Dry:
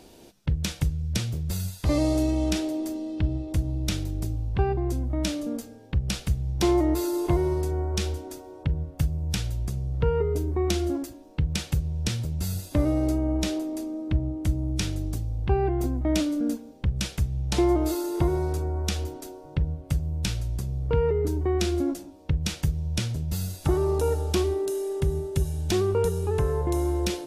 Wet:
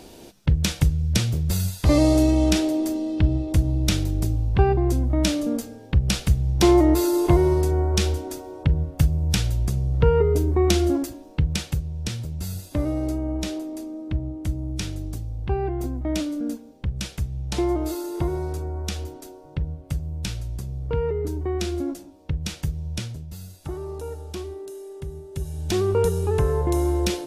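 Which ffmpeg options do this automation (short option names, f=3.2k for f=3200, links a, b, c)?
-af "volume=18.5dB,afade=t=out:st=11.14:d=0.71:silence=0.421697,afade=t=out:st=22.91:d=0.41:silence=0.421697,afade=t=in:st=25.26:d=0.73:silence=0.237137"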